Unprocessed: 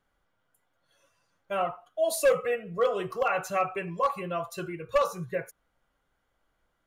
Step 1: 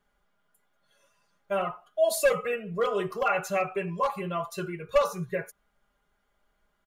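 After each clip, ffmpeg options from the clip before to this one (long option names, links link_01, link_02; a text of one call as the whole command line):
ffmpeg -i in.wav -af "aecho=1:1:4.9:0.65" out.wav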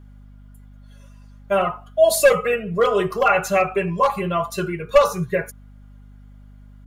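ffmpeg -i in.wav -af "aeval=exprs='val(0)+0.00251*(sin(2*PI*50*n/s)+sin(2*PI*2*50*n/s)/2+sin(2*PI*3*50*n/s)/3+sin(2*PI*4*50*n/s)/4+sin(2*PI*5*50*n/s)/5)':channel_layout=same,volume=9dB" out.wav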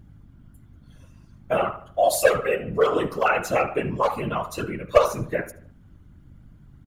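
ffmpeg -i in.wav -filter_complex "[0:a]afftfilt=real='hypot(re,im)*cos(2*PI*random(0))':imag='hypot(re,im)*sin(2*PI*random(1))':win_size=512:overlap=0.75,asplit=2[link_01][link_02];[link_02]adelay=75,lowpass=frequency=2900:poles=1,volume=-15dB,asplit=2[link_03][link_04];[link_04]adelay=75,lowpass=frequency=2900:poles=1,volume=0.46,asplit=2[link_05][link_06];[link_06]adelay=75,lowpass=frequency=2900:poles=1,volume=0.46,asplit=2[link_07][link_08];[link_08]adelay=75,lowpass=frequency=2900:poles=1,volume=0.46[link_09];[link_01][link_03][link_05][link_07][link_09]amix=inputs=5:normalize=0,volume=2dB" out.wav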